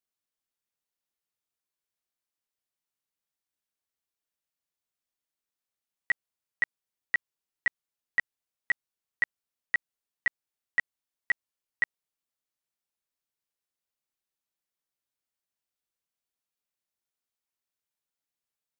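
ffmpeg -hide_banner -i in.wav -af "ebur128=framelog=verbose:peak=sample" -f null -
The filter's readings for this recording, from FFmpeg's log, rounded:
Integrated loudness:
  I:         -32.4 LUFS
  Threshold: -42.4 LUFS
Loudness range:
  LRA:         7.8 LU
  Threshold: -55.0 LUFS
  LRA low:   -41.1 LUFS
  LRA high:  -33.4 LUFS
Sample peak:
  Peak:      -17.8 dBFS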